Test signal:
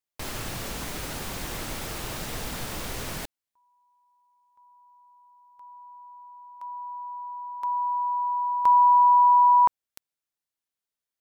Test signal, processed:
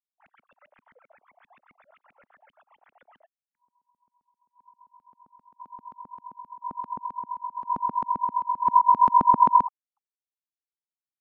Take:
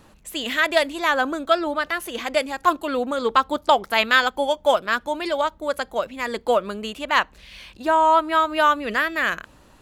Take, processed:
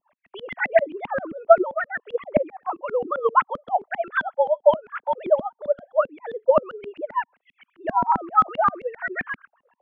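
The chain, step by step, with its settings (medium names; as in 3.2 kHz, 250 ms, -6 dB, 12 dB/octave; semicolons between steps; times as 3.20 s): formants replaced by sine waves; LFO low-pass saw up 7.6 Hz 210–2600 Hz; trim -3.5 dB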